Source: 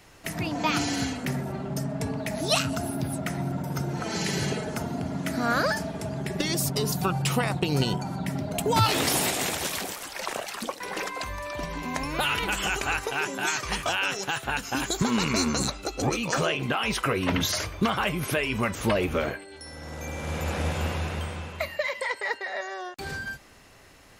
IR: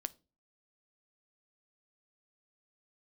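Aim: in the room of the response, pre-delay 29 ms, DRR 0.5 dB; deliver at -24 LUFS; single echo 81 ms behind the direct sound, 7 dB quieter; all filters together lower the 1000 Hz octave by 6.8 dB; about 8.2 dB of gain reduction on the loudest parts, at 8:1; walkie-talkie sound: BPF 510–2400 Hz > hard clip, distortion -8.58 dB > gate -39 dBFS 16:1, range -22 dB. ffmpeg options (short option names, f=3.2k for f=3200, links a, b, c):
-filter_complex "[0:a]equalizer=f=1k:t=o:g=-8.5,acompressor=threshold=-28dB:ratio=8,aecho=1:1:81:0.447,asplit=2[a][b];[1:a]atrim=start_sample=2205,adelay=29[c];[b][c]afir=irnorm=-1:irlink=0,volume=1dB[d];[a][d]amix=inputs=2:normalize=0,highpass=510,lowpass=2.4k,asoftclip=type=hard:threshold=-35dB,agate=range=-22dB:threshold=-39dB:ratio=16,volume=14dB"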